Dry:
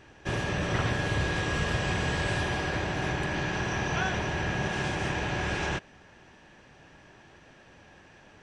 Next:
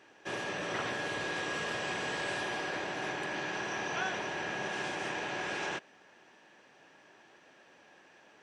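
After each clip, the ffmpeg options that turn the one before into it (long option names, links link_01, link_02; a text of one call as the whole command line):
ffmpeg -i in.wav -af "highpass=300,volume=-4dB" out.wav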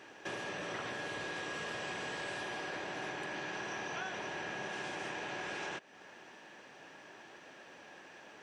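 ffmpeg -i in.wav -af "acompressor=threshold=-47dB:ratio=3,volume=5.5dB" out.wav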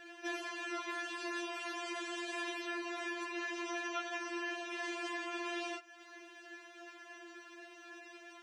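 ffmpeg -i in.wav -af "afftfilt=real='re*4*eq(mod(b,16),0)':imag='im*4*eq(mod(b,16),0)':win_size=2048:overlap=0.75,volume=3dB" out.wav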